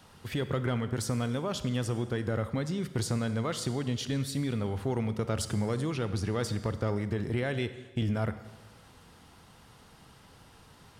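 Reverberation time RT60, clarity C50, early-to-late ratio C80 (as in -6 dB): 1.2 s, 12.0 dB, 14.0 dB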